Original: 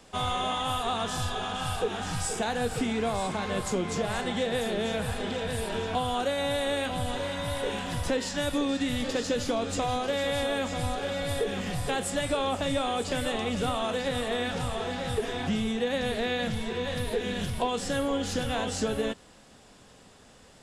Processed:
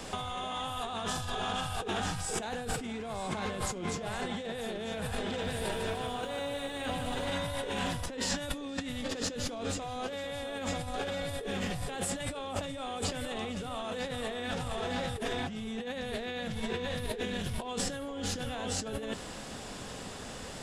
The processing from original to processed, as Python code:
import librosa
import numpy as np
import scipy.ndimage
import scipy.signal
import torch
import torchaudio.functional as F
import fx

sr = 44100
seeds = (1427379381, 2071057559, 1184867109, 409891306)

y = fx.over_compress(x, sr, threshold_db=-39.0, ratio=-1.0)
y = fx.echo_crushed(y, sr, ms=149, feedback_pct=55, bits=11, wet_db=-5.5, at=(5.27, 7.31))
y = y * librosa.db_to_amplitude(3.0)